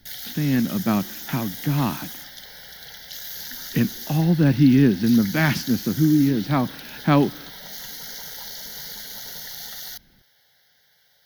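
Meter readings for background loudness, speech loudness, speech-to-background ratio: -34.0 LUFS, -21.0 LUFS, 13.0 dB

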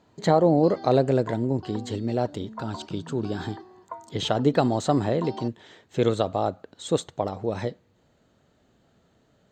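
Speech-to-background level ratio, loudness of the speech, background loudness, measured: 16.0 dB, -25.5 LUFS, -41.5 LUFS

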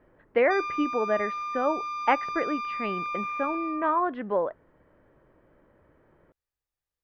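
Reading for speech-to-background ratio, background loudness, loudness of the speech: 4.0 dB, -32.5 LUFS, -28.5 LUFS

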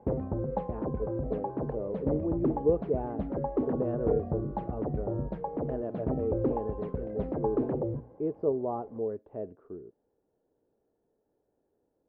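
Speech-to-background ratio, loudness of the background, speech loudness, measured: -1.5 dB, -33.5 LUFS, -35.0 LUFS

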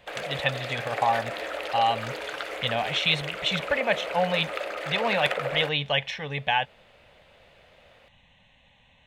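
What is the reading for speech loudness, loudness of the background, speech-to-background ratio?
-27.0 LUFS, -32.5 LUFS, 5.5 dB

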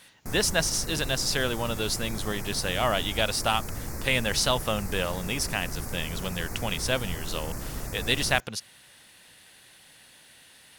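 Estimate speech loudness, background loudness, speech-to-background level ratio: -28.0 LUFS, -36.5 LUFS, 8.5 dB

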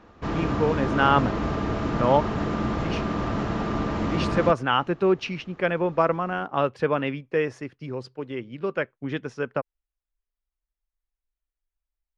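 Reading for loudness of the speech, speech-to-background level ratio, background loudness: -26.0 LUFS, 1.5 dB, -27.5 LUFS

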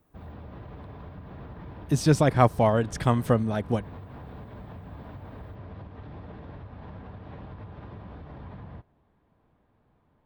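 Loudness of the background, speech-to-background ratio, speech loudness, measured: -43.5 LUFS, 19.5 dB, -24.0 LUFS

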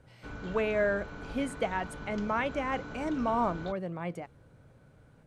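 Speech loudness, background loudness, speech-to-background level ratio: -32.5 LUFS, -43.5 LUFS, 11.0 dB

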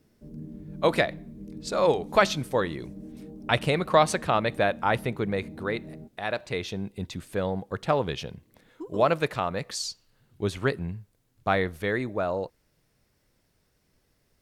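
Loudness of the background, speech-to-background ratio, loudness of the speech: -43.0 LUFS, 15.5 dB, -27.5 LUFS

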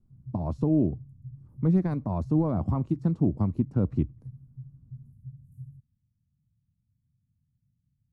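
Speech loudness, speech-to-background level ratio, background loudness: -27.5 LUFS, 19.0 dB, -46.5 LUFS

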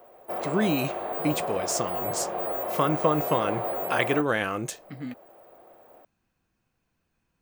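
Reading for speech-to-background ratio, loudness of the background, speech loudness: 2.0 dB, -30.5 LUFS, -28.5 LUFS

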